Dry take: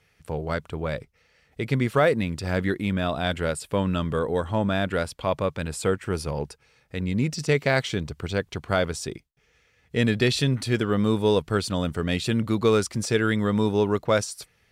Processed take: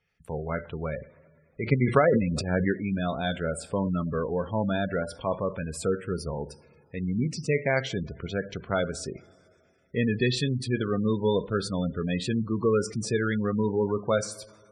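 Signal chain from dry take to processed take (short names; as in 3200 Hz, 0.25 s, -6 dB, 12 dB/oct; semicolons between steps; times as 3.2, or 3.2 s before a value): gate -60 dBFS, range -8 dB; two-slope reverb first 0.42 s, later 2.5 s, from -18 dB, DRR 9 dB; 1.63–2.73 transient shaper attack +7 dB, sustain +11 dB; spectral gate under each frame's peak -20 dB strong; gain -3.5 dB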